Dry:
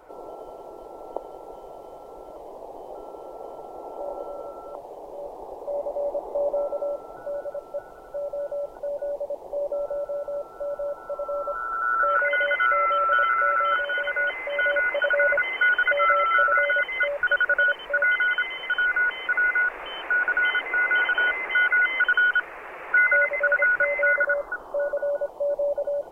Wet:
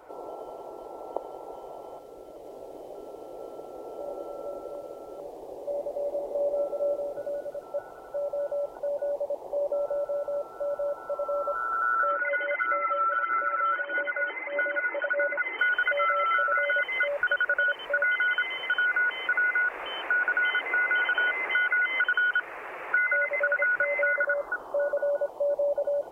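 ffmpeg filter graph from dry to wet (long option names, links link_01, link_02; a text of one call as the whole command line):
ffmpeg -i in.wav -filter_complex "[0:a]asettb=1/sr,asplit=3[link_01][link_02][link_03];[link_01]atrim=end=1.994[link_04];[link_02]atrim=start=1.99:end=7.63,asetpts=PTS-STARTPTS,afade=type=in:duration=0.004:curve=qsin,afade=type=out:start_time=5.636:duration=0.004:curve=qsin,equalizer=frequency=960:width=1.5:gain=-11.5,aecho=1:1:448:0.668,atrim=end_sample=248724[link_05];[link_03]atrim=start=7.626[link_06];[link_04][link_05]acrossfade=duration=0.004:curve1=hsin:curve2=qsin[link_07];[link_07][link_06]acrossfade=duration=0.004:curve1=qsin:curve2=hsin,asettb=1/sr,asplit=3[link_08][link_09][link_10];[link_08]atrim=end=12.114[link_11];[link_09]atrim=start=12.11:end=15.59,asetpts=PTS-STARTPTS,afade=type=in:duration=0.004:curve=qsin,afade=type=out:start_time=3.476:duration=0.004:curve=qsin,aphaser=in_gain=1:out_gain=1:delay=2.3:decay=0.56:speed=1.6:type=sinusoidal,highpass=frequency=190:width=0.5412,highpass=frequency=190:width=1.3066,equalizer=frequency=220:width_type=q:width=4:gain=-9,equalizer=frequency=320:width_type=q:width=4:gain=8,equalizer=frequency=470:width_type=q:width=4:gain=-7,equalizer=frequency=670:width_type=q:width=4:gain=-5,equalizer=frequency=1100:width_type=q:width=4:gain=-6,equalizer=frequency=1600:width_type=q:width=4:gain=-4,lowpass=frequency=2100:width=0.5412,lowpass=frequency=2100:width=1.3066,acompressor=threshold=-27dB:ratio=1.5:attack=3.2:release=140:knee=1:detection=peak[link_12];[link_10]atrim=start=15.586[link_13];[link_11][link_12]acrossfade=duration=0.004:curve1=hsin:curve2=qsin[link_14];[link_14][link_13]acrossfade=duration=0.004:curve1=qsin:curve2=hsin,highpass=frequency=88:poles=1,equalizer=frequency=190:width=7.1:gain=-7.5,acompressor=threshold=-22dB:ratio=6" out.wav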